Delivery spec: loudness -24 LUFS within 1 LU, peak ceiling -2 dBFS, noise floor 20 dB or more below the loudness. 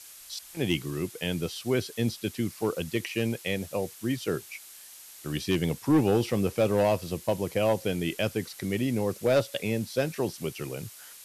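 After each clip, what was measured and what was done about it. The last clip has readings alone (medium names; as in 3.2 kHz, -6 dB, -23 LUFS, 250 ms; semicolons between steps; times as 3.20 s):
clipped samples 0.6%; clipping level -16.5 dBFS; noise floor -48 dBFS; noise floor target -49 dBFS; loudness -29.0 LUFS; peak level -16.5 dBFS; loudness target -24.0 LUFS
-> clip repair -16.5 dBFS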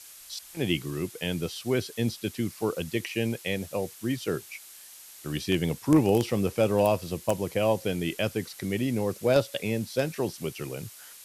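clipped samples 0.0%; noise floor -48 dBFS; noise floor target -49 dBFS
-> noise print and reduce 6 dB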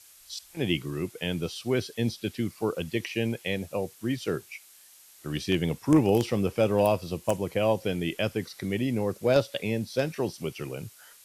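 noise floor -54 dBFS; loudness -28.5 LUFS; peak level -7.5 dBFS; loudness target -24.0 LUFS
-> trim +4.5 dB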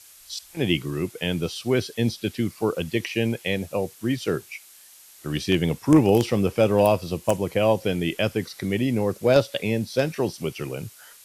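loudness -24.0 LUFS; peak level -3.0 dBFS; noise floor -50 dBFS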